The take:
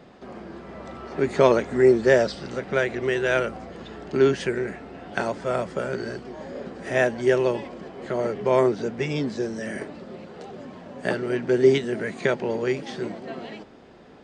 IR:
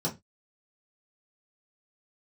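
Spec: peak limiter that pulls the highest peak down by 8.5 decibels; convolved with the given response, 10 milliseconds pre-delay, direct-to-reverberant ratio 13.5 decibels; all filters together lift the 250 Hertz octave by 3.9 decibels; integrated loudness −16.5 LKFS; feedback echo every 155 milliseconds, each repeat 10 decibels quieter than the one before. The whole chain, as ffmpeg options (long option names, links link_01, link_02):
-filter_complex "[0:a]equalizer=frequency=250:width_type=o:gain=5.5,alimiter=limit=-12dB:level=0:latency=1,aecho=1:1:155|310|465|620:0.316|0.101|0.0324|0.0104,asplit=2[link_01][link_02];[1:a]atrim=start_sample=2205,adelay=10[link_03];[link_02][link_03]afir=irnorm=-1:irlink=0,volume=-20dB[link_04];[link_01][link_04]amix=inputs=2:normalize=0,volume=7.5dB"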